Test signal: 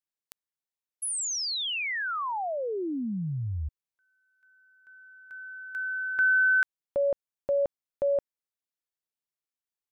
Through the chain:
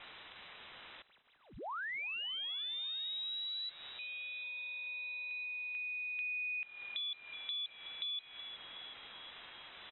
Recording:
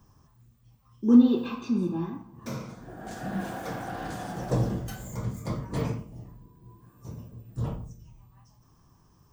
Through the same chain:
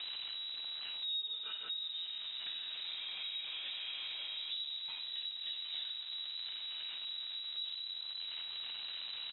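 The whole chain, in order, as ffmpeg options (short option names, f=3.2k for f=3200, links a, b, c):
-filter_complex "[0:a]aeval=exprs='val(0)+0.5*0.0168*sgn(val(0))':c=same,asplit=2[a][b];[b]asplit=5[c][d][e][f][g];[c]adelay=372,afreqshift=38,volume=-21.5dB[h];[d]adelay=744,afreqshift=76,volume=-25.4dB[i];[e]adelay=1116,afreqshift=114,volume=-29.3dB[j];[f]adelay=1488,afreqshift=152,volume=-33.1dB[k];[g]adelay=1860,afreqshift=190,volume=-37dB[l];[h][i][j][k][l]amix=inputs=5:normalize=0[m];[a][m]amix=inputs=2:normalize=0,acompressor=threshold=-42dB:ratio=4:attack=14:release=185:knee=1:detection=rms,asplit=2[n][o];[o]adelay=1749,volume=-19dB,highshelf=f=4k:g=-39.4[p];[n][p]amix=inputs=2:normalize=0,lowpass=f=3.4k:t=q:w=0.5098,lowpass=f=3.4k:t=q:w=0.6013,lowpass=f=3.4k:t=q:w=0.9,lowpass=f=3.4k:t=q:w=2.563,afreqshift=-4000"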